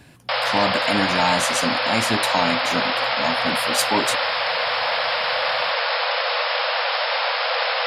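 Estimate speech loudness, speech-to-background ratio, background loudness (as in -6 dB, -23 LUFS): -24.5 LUFS, -3.5 dB, -21.0 LUFS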